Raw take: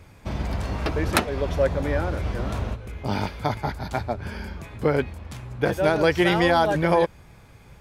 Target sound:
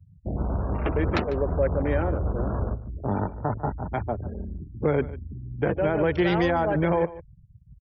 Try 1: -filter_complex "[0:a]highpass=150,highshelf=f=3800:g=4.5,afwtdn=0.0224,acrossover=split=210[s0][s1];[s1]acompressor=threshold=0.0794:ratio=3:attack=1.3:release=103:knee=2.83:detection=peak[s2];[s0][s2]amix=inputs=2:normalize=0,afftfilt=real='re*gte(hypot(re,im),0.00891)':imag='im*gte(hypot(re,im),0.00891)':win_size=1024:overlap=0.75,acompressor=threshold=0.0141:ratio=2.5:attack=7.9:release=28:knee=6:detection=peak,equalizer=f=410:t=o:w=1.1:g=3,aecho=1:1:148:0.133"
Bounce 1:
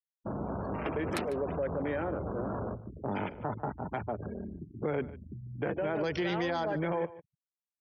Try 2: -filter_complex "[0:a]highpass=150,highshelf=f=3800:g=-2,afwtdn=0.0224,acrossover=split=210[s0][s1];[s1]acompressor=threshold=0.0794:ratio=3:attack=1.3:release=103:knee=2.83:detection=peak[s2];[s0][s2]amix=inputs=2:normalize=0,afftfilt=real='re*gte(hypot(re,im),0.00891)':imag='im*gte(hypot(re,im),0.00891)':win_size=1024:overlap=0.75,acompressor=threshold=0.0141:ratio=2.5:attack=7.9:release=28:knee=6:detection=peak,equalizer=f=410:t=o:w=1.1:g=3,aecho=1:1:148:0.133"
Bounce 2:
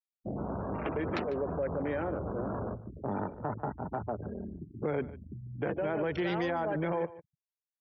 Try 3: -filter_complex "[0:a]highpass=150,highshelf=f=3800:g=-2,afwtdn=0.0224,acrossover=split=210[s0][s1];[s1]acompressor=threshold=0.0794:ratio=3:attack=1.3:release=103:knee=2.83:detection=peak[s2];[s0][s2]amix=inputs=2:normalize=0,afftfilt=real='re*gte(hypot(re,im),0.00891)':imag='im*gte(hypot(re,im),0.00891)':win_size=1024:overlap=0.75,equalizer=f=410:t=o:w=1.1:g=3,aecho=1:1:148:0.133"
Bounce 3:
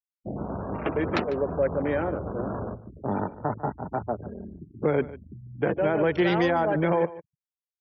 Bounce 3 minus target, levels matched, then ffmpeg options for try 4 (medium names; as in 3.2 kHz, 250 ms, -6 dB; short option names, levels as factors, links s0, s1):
125 Hz band -4.5 dB
-filter_complex "[0:a]highshelf=f=3800:g=-2,afwtdn=0.0224,acrossover=split=210[s0][s1];[s1]acompressor=threshold=0.0794:ratio=3:attack=1.3:release=103:knee=2.83:detection=peak[s2];[s0][s2]amix=inputs=2:normalize=0,afftfilt=real='re*gte(hypot(re,im),0.00891)':imag='im*gte(hypot(re,im),0.00891)':win_size=1024:overlap=0.75,equalizer=f=410:t=o:w=1.1:g=3,aecho=1:1:148:0.133"